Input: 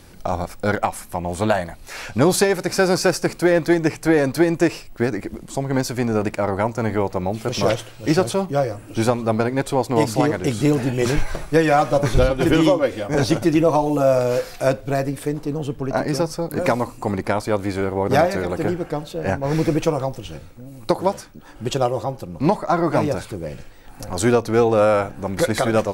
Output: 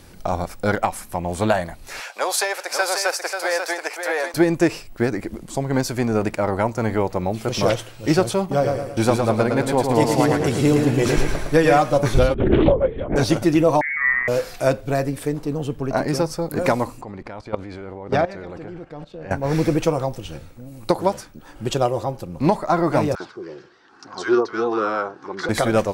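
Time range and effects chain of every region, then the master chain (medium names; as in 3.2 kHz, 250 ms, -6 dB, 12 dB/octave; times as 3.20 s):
2.00–4.34 s: high-pass 590 Hz 24 dB/octave + delay 539 ms -6.5 dB
8.40–11.78 s: gate with hold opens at -23 dBFS, closes at -34 dBFS + feedback delay 111 ms, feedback 45%, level -4.5 dB
12.34–13.16 s: resonances exaggerated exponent 1.5 + LPC vocoder at 8 kHz whisper + loudspeaker Doppler distortion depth 0.39 ms
13.81–14.28 s: high-pass 360 Hz + peaking EQ 880 Hz -4 dB 1.8 oct + frequency inversion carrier 2.5 kHz
17.01–19.31 s: low-pass 4.4 kHz + level held to a coarse grid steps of 17 dB
23.15–25.49 s: bands offset in time highs, lows 50 ms, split 1.1 kHz + flange 1.2 Hz, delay 0.6 ms, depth 1.9 ms, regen -63% + cabinet simulation 290–5500 Hz, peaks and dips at 370 Hz +10 dB, 560 Hz -10 dB, 1.1 kHz +9 dB, 1.5 kHz +7 dB, 2.4 kHz -6 dB, 5.3 kHz +4 dB
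whole clip: none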